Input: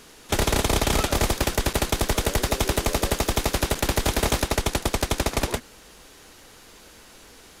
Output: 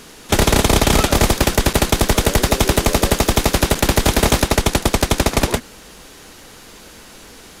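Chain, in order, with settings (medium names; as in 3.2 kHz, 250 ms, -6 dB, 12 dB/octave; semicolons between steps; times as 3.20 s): peaking EQ 190 Hz +3.5 dB 1 oct; trim +7.5 dB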